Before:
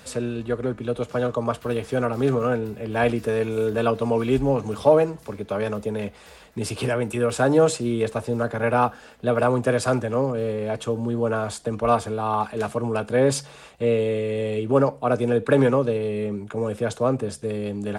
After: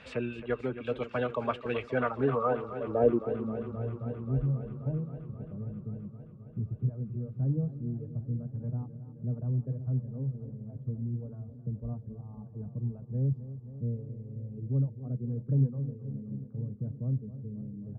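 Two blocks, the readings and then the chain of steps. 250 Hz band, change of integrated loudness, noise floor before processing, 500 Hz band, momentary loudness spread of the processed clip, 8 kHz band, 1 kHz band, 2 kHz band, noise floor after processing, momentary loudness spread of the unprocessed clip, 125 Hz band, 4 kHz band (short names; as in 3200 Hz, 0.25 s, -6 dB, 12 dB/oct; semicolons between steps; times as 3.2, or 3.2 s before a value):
-10.5 dB, -10.0 dB, -47 dBFS, -14.0 dB, 12 LU, under -35 dB, -14.0 dB, under -10 dB, -49 dBFS, 9 LU, -2.5 dB, under -15 dB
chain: low-pass sweep 2600 Hz -> 150 Hz, 1.84–3.84; reverb removal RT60 1.7 s; warbling echo 0.265 s, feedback 78%, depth 54 cents, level -13.5 dB; gain -6 dB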